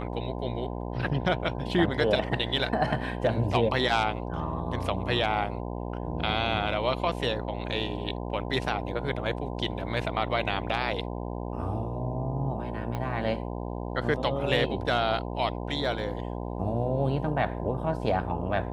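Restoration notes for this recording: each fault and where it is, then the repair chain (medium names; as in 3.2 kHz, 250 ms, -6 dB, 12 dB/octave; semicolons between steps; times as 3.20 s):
buzz 60 Hz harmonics 17 -34 dBFS
12.95 s: pop -20 dBFS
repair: de-click; de-hum 60 Hz, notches 17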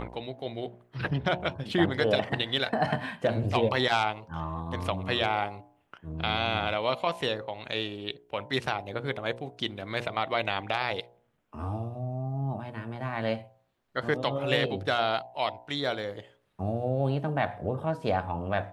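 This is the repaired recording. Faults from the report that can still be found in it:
12.95 s: pop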